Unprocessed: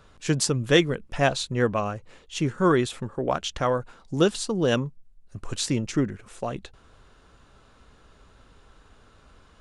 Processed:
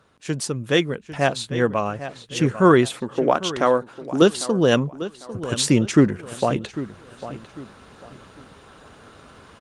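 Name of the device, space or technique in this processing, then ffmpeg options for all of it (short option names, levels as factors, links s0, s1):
video call: -filter_complex "[0:a]asettb=1/sr,asplit=3[s0][s1][s2];[s0]atrim=end=2.944[s3];[s1]atrim=start=2.94:end=4.22,asetpts=PTS-STARTPTS,afade=t=in:d=0.004:c=qsin,afade=t=out:st=1.276:d=0.004:c=qsin,lowshelf=f=200:t=q:w=1.5:g=-7[s4];[s2]atrim=start=4.216[s5];[s3][s4]acrossfade=d=0.004:c1=hsin:c2=qsin[s6];[s6][s5]acrossfade=d=0.004:c1=qsin:c2=hsin,highpass=110,asplit=2[s7][s8];[s8]adelay=799,lowpass=f=4500:p=1,volume=0.178,asplit=2[s9][s10];[s10]adelay=799,lowpass=f=4500:p=1,volume=0.29,asplit=2[s11][s12];[s12]adelay=799,lowpass=f=4500:p=1,volume=0.29[s13];[s7][s9][s11][s13]amix=inputs=4:normalize=0,dynaudnorm=f=130:g=13:m=5.01,volume=0.841" -ar 48000 -c:a libopus -b:a 32k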